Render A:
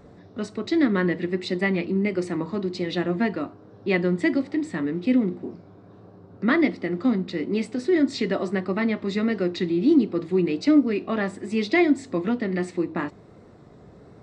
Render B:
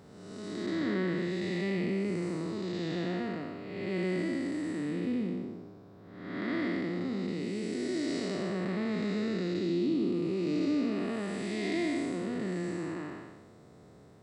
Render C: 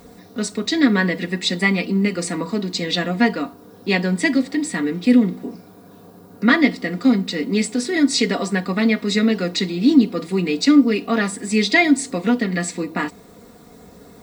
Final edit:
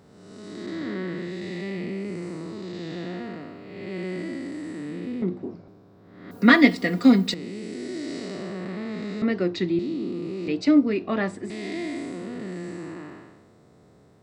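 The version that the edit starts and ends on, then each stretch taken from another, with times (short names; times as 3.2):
B
5.22–5.68 from A
6.31–7.34 from C
9.22–9.79 from A
10.48–11.5 from A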